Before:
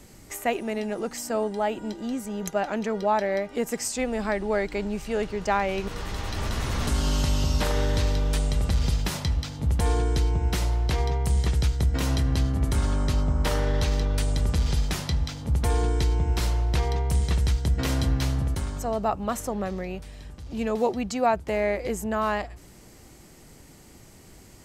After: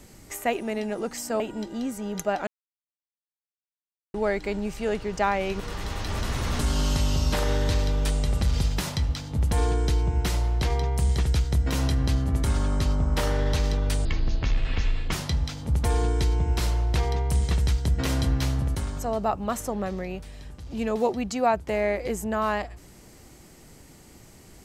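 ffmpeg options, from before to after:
-filter_complex "[0:a]asplit=6[a][b][c][d][e][f];[a]atrim=end=1.402[g];[b]atrim=start=1.678:end=2.75,asetpts=PTS-STARTPTS,afade=t=out:st=1.068:d=0.004:c=hsin[h];[c]atrim=start=2.75:end=4.42,asetpts=PTS-STARTPTS,volume=0[i];[d]atrim=start=4.42:end=14.334,asetpts=PTS-STARTPTS,afade=t=in:d=0.004:c=hsin[j];[e]atrim=start=14.33:end=14.92,asetpts=PTS-STARTPTS,asetrate=24255,aresample=44100,atrim=end_sample=47307,asetpts=PTS-STARTPTS[k];[f]atrim=start=14.916[l];[h][i][j]concat=n=3:v=0:a=1[m];[g][m]acrossfade=d=0.004:c1=hsin:c2=hsin[n];[n][k]acrossfade=d=0.004:c1=hsin:c2=hsin[o];[o][l]acrossfade=d=0.004:c1=hsin:c2=hsin"

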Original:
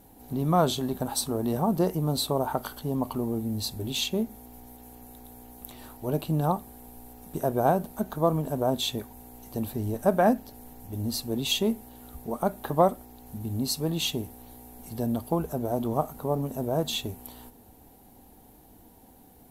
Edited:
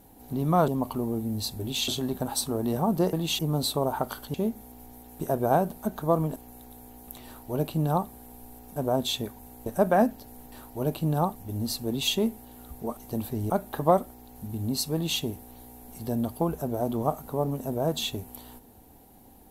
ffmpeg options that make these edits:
-filter_complex "[0:a]asplit=14[a][b][c][d][e][f][g][h][i][j][k][l][m][n];[a]atrim=end=0.682[o];[b]atrim=start=2.878:end=4.082[p];[c]atrim=start=0.678:end=1.932[q];[d]atrim=start=13.848:end=14.112[r];[e]atrim=start=1.928:end=2.882[s];[f]atrim=start=4.078:end=4.902[t];[g]atrim=start=7.298:end=8.502[u];[h]atrim=start=4.898:end=7.302[v];[i]atrim=start=8.498:end=9.402[w];[j]atrim=start=9.928:end=10.792[x];[k]atrim=start=5.788:end=6.622[y];[l]atrim=start=10.788:end=12.412[z];[m]atrim=start=9.398:end=9.932[aa];[n]atrim=start=12.408[ab];[o][p]acrossfade=d=0.004:c1=hsin:c2=hsin[ac];[ac][q]acrossfade=d=0.004:c1=hsin:c2=hsin[ad];[ad][r]acrossfade=d=0.004:c1=hsin:c2=hsin[ae];[ae][s]acrossfade=d=0.004:c1=hsin:c2=hsin[af];[af][t]acrossfade=d=0.004:c1=hsin:c2=hsin[ag];[ag][u]acrossfade=d=0.004:c1=hsin:c2=hsin[ah];[ah][v]acrossfade=d=0.004:c1=hsin:c2=hsin[ai];[ai][w]acrossfade=d=0.004:c1=hsin:c2=hsin[aj];[aj][x]acrossfade=d=0.004:c1=hsin:c2=hsin[ak];[ak][y]acrossfade=d=0.004:c1=hsin:c2=hsin[al];[al][z]acrossfade=d=0.004:c1=hsin:c2=hsin[am];[am][aa]acrossfade=d=0.004:c1=hsin:c2=hsin[an];[an][ab]acrossfade=d=0.004:c1=hsin:c2=hsin"

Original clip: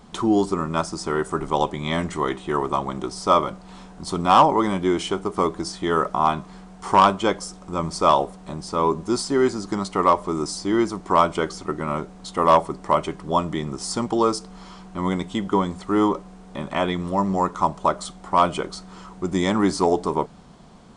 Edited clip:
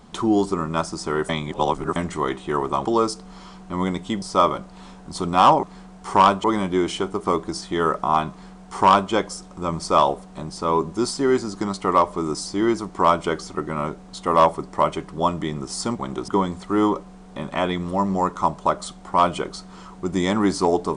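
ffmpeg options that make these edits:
-filter_complex "[0:a]asplit=9[a][b][c][d][e][f][g][h][i];[a]atrim=end=1.292[j];[b]atrim=start=1.288:end=1.962,asetpts=PTS-STARTPTS,areverse[k];[c]atrim=start=1.958:end=2.852[l];[d]atrim=start=14.098:end=15.472[m];[e]atrim=start=3.138:end=4.552[n];[f]atrim=start=6.408:end=7.222[o];[g]atrim=start=4.548:end=14.102[p];[h]atrim=start=2.848:end=3.142[q];[i]atrim=start=15.468[r];[j][k]acrossfade=d=0.004:c1=hsin:c2=hsin[s];[s][l]acrossfade=d=0.004:c1=hsin:c2=hsin[t];[t][m]acrossfade=d=0.004:c1=hsin:c2=hsin[u];[u][n]acrossfade=d=0.004:c1=hsin:c2=hsin[v];[v][o]acrossfade=d=0.004:c1=hsin:c2=hsin[w];[w][p]acrossfade=d=0.004:c1=hsin:c2=hsin[x];[x][q]acrossfade=d=0.004:c1=hsin:c2=hsin[y];[y][r]acrossfade=d=0.004:c1=hsin:c2=hsin"

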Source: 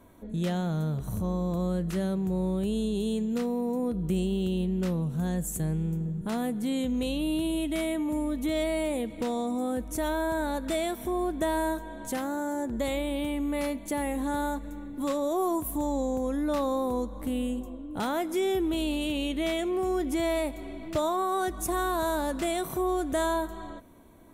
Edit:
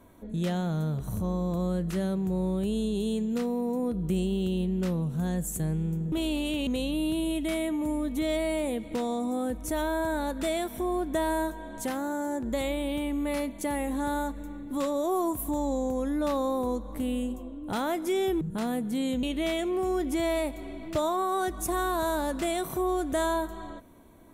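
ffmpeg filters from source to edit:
-filter_complex "[0:a]asplit=5[a][b][c][d][e];[a]atrim=end=6.122[f];[b]atrim=start=18.678:end=19.232[g];[c]atrim=start=6.938:end=18.682[h];[d]atrim=start=6.118:end=6.942[i];[e]atrim=start=19.228[j];[f][g]acrossfade=d=0.004:c1=hsin:c2=hsin[k];[k][h]acrossfade=d=0.004:c1=hsin:c2=hsin[l];[l][i]acrossfade=d=0.004:c1=hsin:c2=hsin[m];[m][j]acrossfade=d=0.004:c1=hsin:c2=hsin"

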